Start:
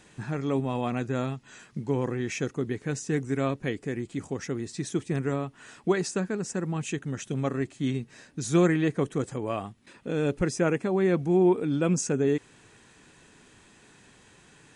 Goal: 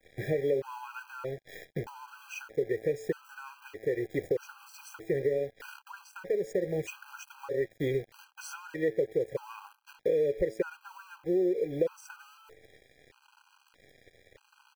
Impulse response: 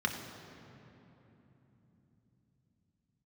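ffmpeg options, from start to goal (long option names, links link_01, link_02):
-af "aecho=1:1:2.1:0.78,bandreject=frequency=110.1:width_type=h:width=4,bandreject=frequency=220.2:width_type=h:width=4,bandreject=frequency=330.3:width_type=h:width=4,bandreject=frequency=440.4:width_type=h:width=4,bandreject=frequency=550.5:width_type=h:width=4,bandreject=frequency=660.6:width_type=h:width=4,bandreject=frequency=770.7:width_type=h:width=4,bandreject=frequency=880.8:width_type=h:width=4,bandreject=frequency=990.9:width_type=h:width=4,bandreject=frequency=1101:width_type=h:width=4,bandreject=frequency=1211.1:width_type=h:width=4,bandreject=frequency=1321.2:width_type=h:width=4,bandreject=frequency=1431.3:width_type=h:width=4,bandreject=frequency=1541.4:width_type=h:width=4,bandreject=frequency=1651.5:width_type=h:width=4,bandreject=frequency=1761.6:width_type=h:width=4,bandreject=frequency=1871.7:width_type=h:width=4,bandreject=frequency=1981.8:width_type=h:width=4,bandreject=frequency=2091.9:width_type=h:width=4,bandreject=frequency=2202:width_type=h:width=4,bandreject=frequency=2312.1:width_type=h:width=4,bandreject=frequency=2422.2:width_type=h:width=4,bandreject=frequency=2532.3:width_type=h:width=4,bandreject=frequency=2642.4:width_type=h:width=4,bandreject=frequency=2752.5:width_type=h:width=4,bandreject=frequency=2862.6:width_type=h:width=4,bandreject=frequency=2972.7:width_type=h:width=4,acrusher=bits=8:dc=4:mix=0:aa=0.000001,equalizer=frequency=125:width_type=o:width=1:gain=-6,equalizer=frequency=250:width_type=o:width=1:gain=-4,equalizer=frequency=500:width_type=o:width=1:gain=12,equalizer=frequency=1000:width_type=o:width=1:gain=-5,equalizer=frequency=2000:width_type=o:width=1:gain=7,equalizer=frequency=4000:width_type=o:width=1:gain=-5,equalizer=frequency=8000:width_type=o:width=1:gain=-11,acompressor=threshold=-31dB:ratio=6,adynamicequalizer=threshold=0.00141:dfrequency=3100:dqfactor=1.1:tfrequency=3100:tqfactor=1.1:attack=5:release=100:ratio=0.375:range=2.5:mode=cutabove:tftype=bell,aeval=exprs='sgn(val(0))*max(abs(val(0))-0.00224,0)':channel_layout=same,afftfilt=real='re*gt(sin(2*PI*0.8*pts/sr)*(1-2*mod(floor(b*sr/1024/810),2)),0)':imag='im*gt(sin(2*PI*0.8*pts/sr)*(1-2*mod(floor(b*sr/1024/810),2)),0)':win_size=1024:overlap=0.75,volume=5.5dB"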